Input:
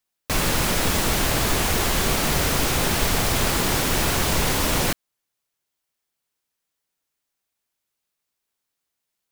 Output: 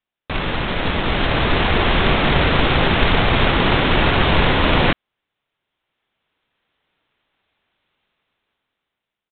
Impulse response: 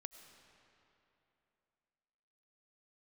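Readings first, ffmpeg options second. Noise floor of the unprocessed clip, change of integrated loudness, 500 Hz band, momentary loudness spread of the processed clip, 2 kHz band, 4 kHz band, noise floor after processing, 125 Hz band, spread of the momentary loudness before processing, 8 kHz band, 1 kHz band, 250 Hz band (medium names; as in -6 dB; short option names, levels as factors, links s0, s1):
-81 dBFS, +4.0 dB, +6.5 dB, 7 LU, +6.5 dB, +4.0 dB, -85 dBFS, +6.0 dB, 1 LU, under -40 dB, +6.5 dB, +6.0 dB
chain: -af "dynaudnorm=f=380:g=7:m=6.68,aresample=8000,acrusher=bits=2:mode=log:mix=0:aa=0.000001,aresample=44100"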